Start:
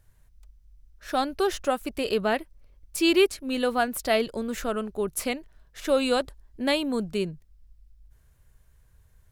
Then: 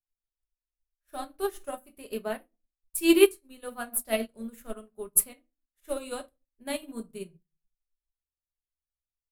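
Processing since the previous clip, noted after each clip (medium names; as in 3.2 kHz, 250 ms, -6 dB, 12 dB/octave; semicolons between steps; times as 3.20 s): resonant high shelf 7.7 kHz +12 dB, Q 1.5; simulated room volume 250 m³, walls furnished, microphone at 1.3 m; upward expansion 2.5:1, over -43 dBFS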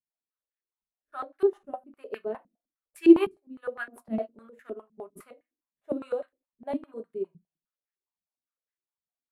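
step-sequenced band-pass 9.8 Hz 200–1800 Hz; trim +9 dB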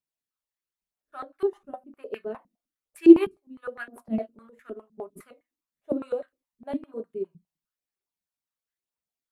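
phaser 1 Hz, delay 1.1 ms, feedback 38%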